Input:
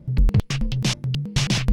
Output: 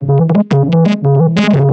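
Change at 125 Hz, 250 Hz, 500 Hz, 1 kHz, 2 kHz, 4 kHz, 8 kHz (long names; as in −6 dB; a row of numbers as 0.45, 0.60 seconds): +11.5 dB, +16.5 dB, +24.5 dB, +17.5 dB, +7.5 dB, 0.0 dB, can't be measured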